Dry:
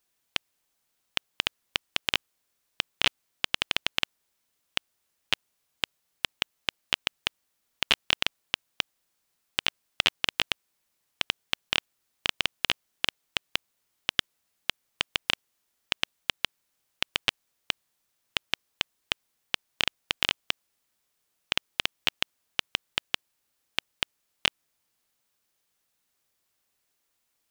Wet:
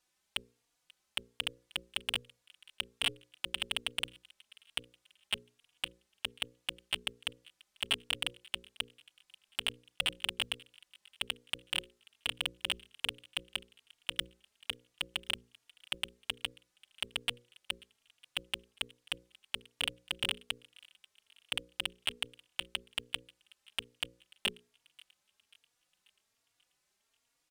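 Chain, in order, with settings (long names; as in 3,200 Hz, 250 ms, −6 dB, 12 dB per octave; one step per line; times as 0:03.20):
low-pass filter 9,800 Hz 12 dB per octave
mains-hum notches 60/120/180/240/300/360/420/480/540 Hz
soft clipping −16 dBFS, distortion −7 dB
on a send: delay with a high-pass on its return 537 ms, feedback 51%, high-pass 1,600 Hz, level −23.5 dB
on the sum: barber-pole flanger 3.6 ms +1.2 Hz
level +3 dB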